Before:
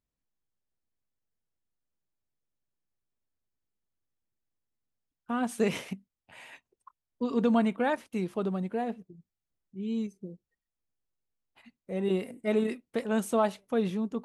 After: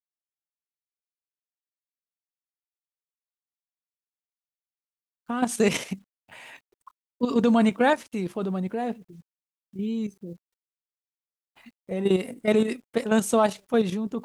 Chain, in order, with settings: bit-crush 12-bit; level quantiser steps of 9 dB; dynamic EQ 6700 Hz, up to +7 dB, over -58 dBFS, Q 0.78; gain +8.5 dB

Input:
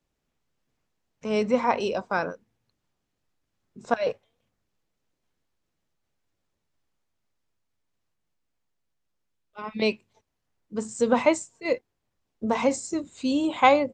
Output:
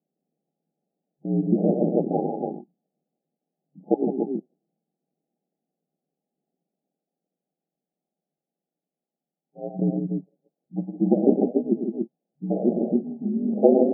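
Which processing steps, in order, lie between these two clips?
loudspeakers at several distances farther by 37 m -7 dB, 55 m -6 dB, 98 m -4 dB; pitch shift -10 st; ring modulator 62 Hz; FFT band-pass 140–850 Hz; gain +4.5 dB

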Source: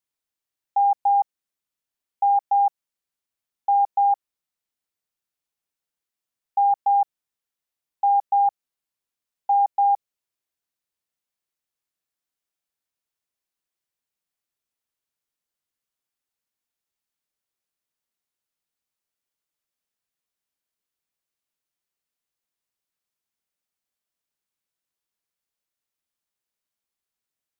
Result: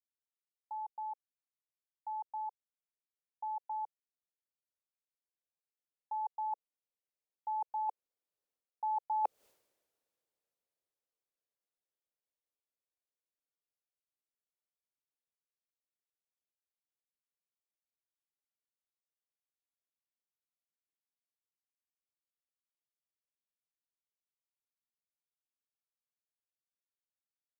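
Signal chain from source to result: Doppler pass-by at 9.46, 24 m/s, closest 1.4 m; bell 500 Hz +14.5 dB 1.3 oct; reverse; compressor 5:1, threshold -51 dBFS, peak gain reduction 23 dB; reverse; gain +16 dB

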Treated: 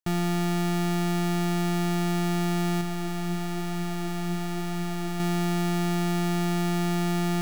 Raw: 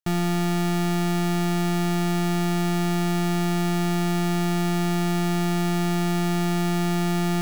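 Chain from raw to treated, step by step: 2.81–5.2 flange 1 Hz, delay 6.1 ms, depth 5.3 ms, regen +68%; gain -2.5 dB

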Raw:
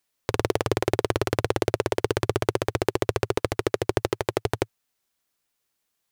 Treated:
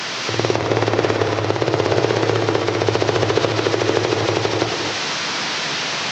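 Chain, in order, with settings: delta modulation 32 kbps, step -19.5 dBFS; HPF 120 Hz 24 dB/oct; high shelf 4100 Hz -5.5 dB; in parallel at +1.5 dB: level quantiser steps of 12 dB; on the sum: non-linear reverb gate 0.3 s rising, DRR 0 dB; gain -1 dB

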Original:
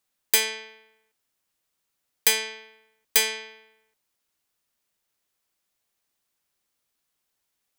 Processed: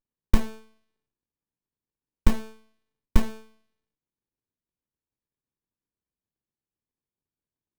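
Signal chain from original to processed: low-pass opened by the level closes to 2900 Hz, open at -21.5 dBFS; pre-emphasis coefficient 0.9; running maximum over 65 samples; gain +6 dB

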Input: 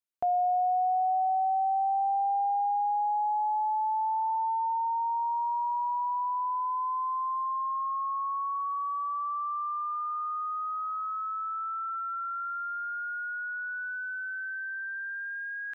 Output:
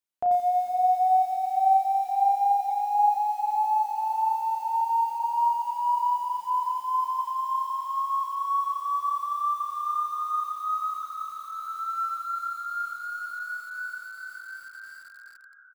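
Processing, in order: ending faded out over 3.57 s; 2.81–3.9 bell 130 Hz -6.5 dB 0.75 oct; 11.03–11.68 LPF 1100 Hz 24 dB/oct; flange 0.27 Hz, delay 9.6 ms, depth 3.6 ms, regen -70%; doubler 35 ms -6 dB; diffused feedback echo 0.518 s, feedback 57%, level -11 dB; lo-fi delay 87 ms, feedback 35%, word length 9-bit, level -4 dB; gain +5 dB

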